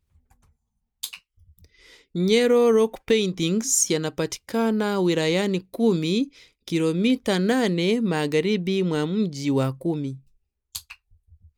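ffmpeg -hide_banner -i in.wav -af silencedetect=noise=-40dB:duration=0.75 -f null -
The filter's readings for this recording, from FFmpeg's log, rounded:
silence_start: 0.00
silence_end: 1.03 | silence_duration: 1.03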